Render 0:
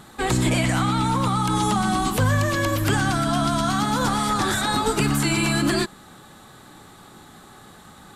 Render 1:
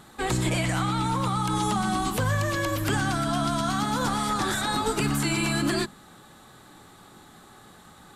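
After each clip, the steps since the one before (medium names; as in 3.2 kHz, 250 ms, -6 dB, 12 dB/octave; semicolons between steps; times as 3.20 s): hum notches 50/100/150/200/250 Hz; trim -4 dB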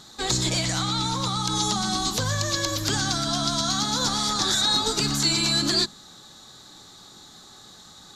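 high-order bell 5 kHz +15 dB 1.2 oct; trim -2 dB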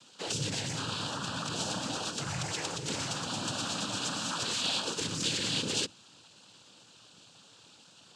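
noise-vocoded speech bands 8; trim -9 dB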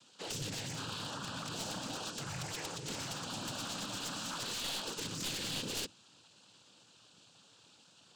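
one-sided wavefolder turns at -30 dBFS; trim -5.5 dB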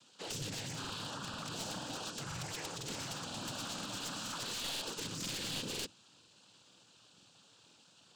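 crackling interface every 0.49 s, samples 2048, repeat, from 0.80 s; trim -1 dB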